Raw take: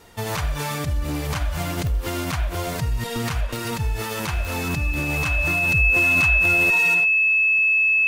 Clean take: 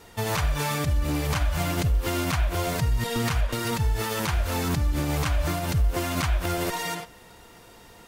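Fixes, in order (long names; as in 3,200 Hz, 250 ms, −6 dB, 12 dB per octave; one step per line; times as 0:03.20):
click removal
notch filter 2,600 Hz, Q 30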